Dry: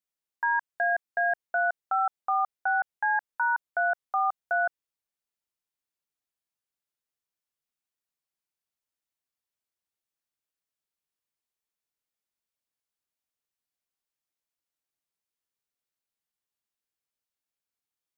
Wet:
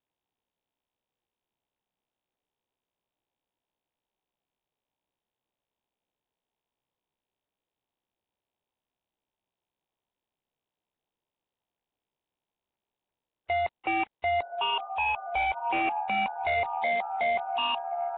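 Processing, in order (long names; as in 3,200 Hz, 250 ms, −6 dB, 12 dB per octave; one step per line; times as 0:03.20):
played backwards from end to start
elliptic low-pass filter 970 Hz, stop band 80 dB
low-shelf EQ 480 Hz −3.5 dB
on a send: feedback delay with all-pass diffusion 1,004 ms, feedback 61%, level −13.5 dB
on the sum: sine wavefolder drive 9 dB, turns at −22.5 dBFS
Nellymoser 16 kbit/s 8,000 Hz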